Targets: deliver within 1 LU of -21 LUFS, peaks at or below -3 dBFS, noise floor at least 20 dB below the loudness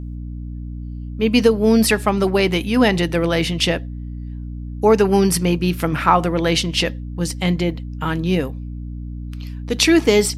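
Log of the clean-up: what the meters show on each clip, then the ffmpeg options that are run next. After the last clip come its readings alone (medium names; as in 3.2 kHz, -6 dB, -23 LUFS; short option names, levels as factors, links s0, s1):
hum 60 Hz; highest harmonic 300 Hz; hum level -27 dBFS; loudness -18.0 LUFS; peak level -1.5 dBFS; loudness target -21.0 LUFS
-> -af "bandreject=f=60:t=h:w=6,bandreject=f=120:t=h:w=6,bandreject=f=180:t=h:w=6,bandreject=f=240:t=h:w=6,bandreject=f=300:t=h:w=6"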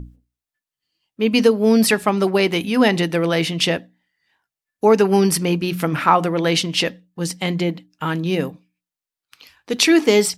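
hum not found; loudness -18.5 LUFS; peak level -1.5 dBFS; loudness target -21.0 LUFS
-> -af "volume=0.75"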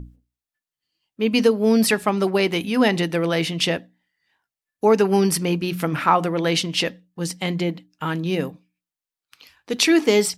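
loudness -21.0 LUFS; peak level -4.0 dBFS; noise floor -91 dBFS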